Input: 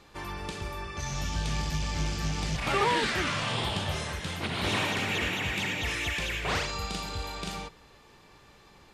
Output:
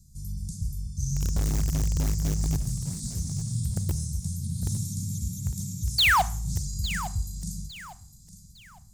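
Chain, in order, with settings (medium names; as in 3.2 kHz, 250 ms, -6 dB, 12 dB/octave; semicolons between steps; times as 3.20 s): inverse Chebyshev band-stop 390–3000 Hz, stop band 50 dB; painted sound fall, 5.98–6.22 s, 660–4800 Hz -24 dBFS; in parallel at -8 dB: integer overflow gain 26 dB; on the sum: thinning echo 856 ms, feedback 32%, high-pass 200 Hz, level -13 dB; Schroeder reverb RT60 0.45 s, combs from 30 ms, DRR 18 dB; trim +5 dB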